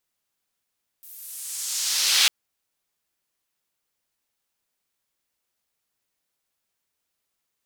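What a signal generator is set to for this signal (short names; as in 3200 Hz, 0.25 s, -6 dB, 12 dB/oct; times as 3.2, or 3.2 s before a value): swept filtered noise white, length 1.25 s bandpass, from 15000 Hz, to 3300 Hz, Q 1.4, exponential, gain ramp +31 dB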